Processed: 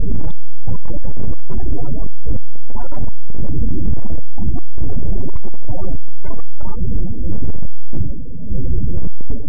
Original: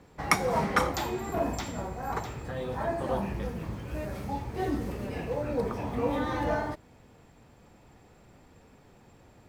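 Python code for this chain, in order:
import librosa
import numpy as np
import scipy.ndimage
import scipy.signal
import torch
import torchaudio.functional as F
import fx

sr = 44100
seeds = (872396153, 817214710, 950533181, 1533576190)

p1 = fx.dmg_wind(x, sr, seeds[0], corner_hz=300.0, level_db=-30.0)
p2 = np.abs(p1)
p3 = fx.rider(p2, sr, range_db=4, speed_s=0.5)
p4 = p2 + (p3 * librosa.db_to_amplitude(-0.5))
p5 = fx.spec_topn(p4, sr, count=8)
p6 = fx.riaa(p5, sr, side='playback')
p7 = fx.spec_topn(p6, sr, count=32)
p8 = np.clip(10.0 ** (6.5 / 20.0) * p7, -1.0, 1.0) / 10.0 ** (6.5 / 20.0)
p9 = fx.env_flatten(p8, sr, amount_pct=50)
y = p9 * librosa.db_to_amplitude(3.0)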